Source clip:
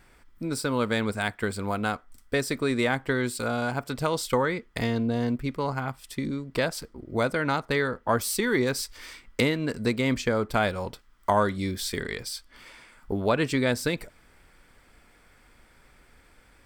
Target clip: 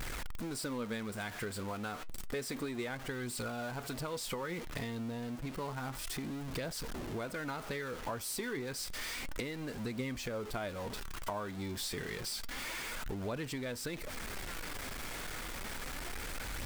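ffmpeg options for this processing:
ffmpeg -i in.wav -af "aeval=exprs='val(0)+0.5*0.0398*sgn(val(0))':channel_layout=same,acompressor=threshold=-29dB:ratio=4,flanger=delay=0.1:depth=8:regen=69:speed=0.3:shape=triangular,volume=-3.5dB" out.wav

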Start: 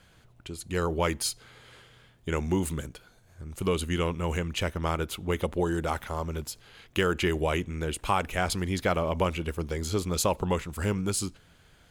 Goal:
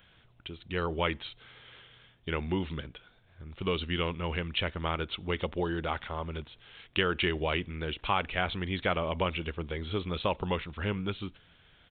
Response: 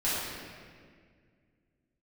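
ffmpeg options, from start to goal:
-af "aresample=8000,aresample=44100,crystalizer=i=4.5:c=0,volume=-4.5dB"

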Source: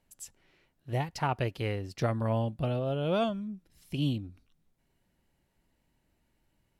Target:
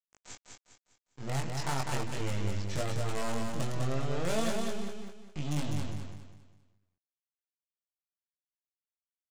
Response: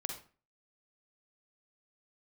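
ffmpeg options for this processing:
-filter_complex "[0:a]equalizer=frequency=71:width_type=o:width=1.8:gain=4,bandreject=frequency=60:width_type=h:width=6,bandreject=frequency=120:width_type=h:width=6,bandreject=frequency=180:width_type=h:width=6,bandreject=frequency=240:width_type=h:width=6,bandreject=frequency=300:width_type=h:width=6,bandreject=frequency=360:width_type=h:width=6,bandreject=frequency=420:width_type=h:width=6,aresample=16000,acrusher=bits=5:dc=4:mix=0:aa=0.000001,aresample=44100,asoftclip=type=tanh:threshold=-31dB,atempo=0.73,flanger=delay=20:depth=2.8:speed=0.36,asplit=2[link_01][link_02];[link_02]aecho=0:1:202|404|606|808|1010:0.631|0.227|0.0818|0.0294|0.0106[link_03];[link_01][link_03]amix=inputs=2:normalize=0,volume=7dB"

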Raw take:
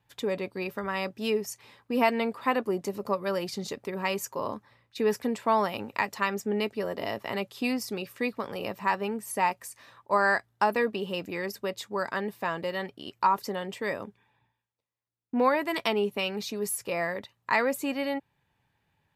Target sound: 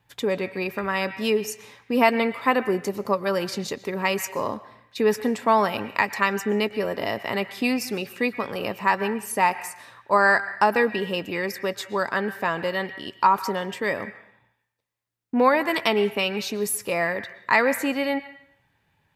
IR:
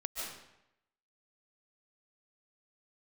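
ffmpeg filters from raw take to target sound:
-filter_complex "[0:a]asplit=2[link_01][link_02];[link_02]equalizer=frequency=1900:width_type=o:width=1.5:gain=14[link_03];[1:a]atrim=start_sample=2205,asetrate=52920,aresample=44100[link_04];[link_03][link_04]afir=irnorm=-1:irlink=0,volume=-19dB[link_05];[link_01][link_05]amix=inputs=2:normalize=0,volume=4.5dB"

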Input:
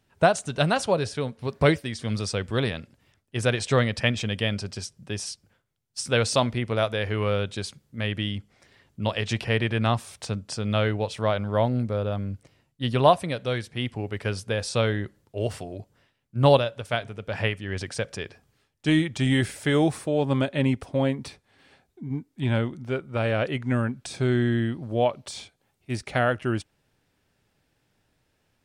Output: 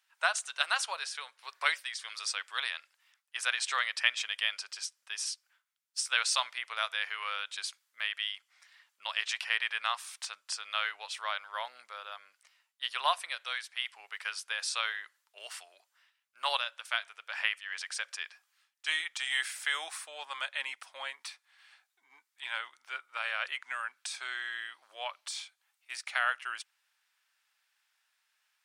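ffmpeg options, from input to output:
ffmpeg -i in.wav -af "highpass=frequency=1100:width=0.5412,highpass=frequency=1100:width=1.3066,volume=-1dB" out.wav

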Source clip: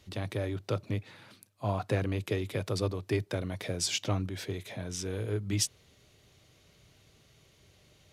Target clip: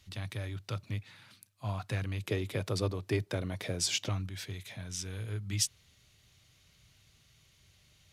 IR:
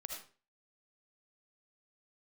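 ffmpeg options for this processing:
-af "asetnsamples=nb_out_samples=441:pad=0,asendcmd='2.24 equalizer g -2;4.09 equalizer g -13',equalizer=frequency=430:width=0.61:gain=-13"

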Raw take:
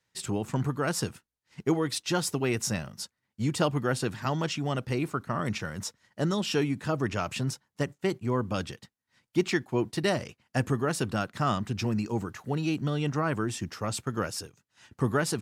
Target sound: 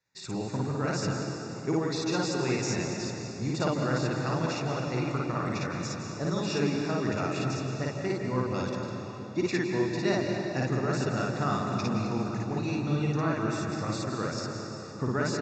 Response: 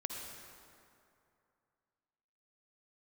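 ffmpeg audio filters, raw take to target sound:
-filter_complex "[0:a]equalizer=frequency=64:width=1.5:gain=-4,asplit=2[link_01][link_02];[1:a]atrim=start_sample=2205,asetrate=24255,aresample=44100,adelay=55[link_03];[link_02][link_03]afir=irnorm=-1:irlink=0,volume=-1dB[link_04];[link_01][link_04]amix=inputs=2:normalize=0,aresample=16000,aresample=44100,asuperstop=centerf=3100:order=8:qfactor=5.5,volume=-5dB"

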